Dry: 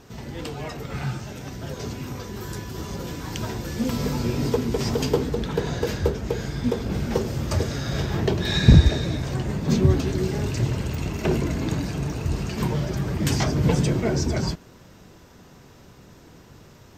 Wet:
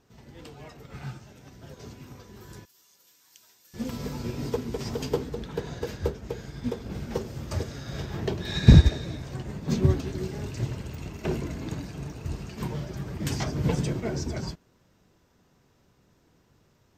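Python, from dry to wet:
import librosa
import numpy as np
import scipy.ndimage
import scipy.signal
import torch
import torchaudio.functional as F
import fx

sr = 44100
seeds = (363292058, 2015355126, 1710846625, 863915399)

y = fx.differentiator(x, sr, at=(2.65, 3.74))
y = fx.upward_expand(y, sr, threshold_db=-38.0, expansion=1.5)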